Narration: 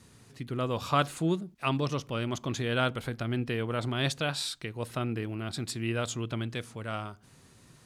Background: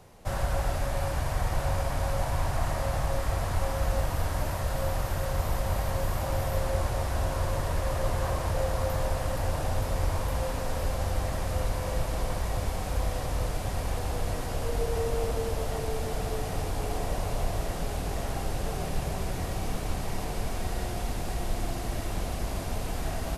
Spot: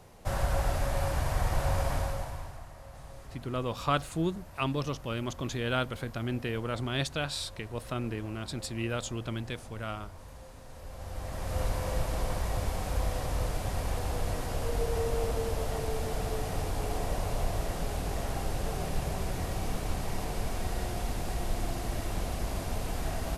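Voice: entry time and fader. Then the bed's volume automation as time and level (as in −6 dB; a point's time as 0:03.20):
2.95 s, −2.0 dB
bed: 0:01.95 −0.5 dB
0:02.68 −19 dB
0:10.66 −19 dB
0:11.62 −1.5 dB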